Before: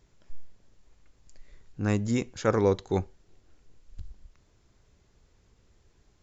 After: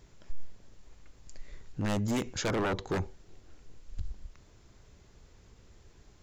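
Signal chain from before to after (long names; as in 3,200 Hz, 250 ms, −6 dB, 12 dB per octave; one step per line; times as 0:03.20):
wave folding −23.5 dBFS
0:02.48–0:02.88: high-shelf EQ 3,500 Hz −8.5 dB
brickwall limiter −30 dBFS, peak gain reduction 6.5 dB
level +6 dB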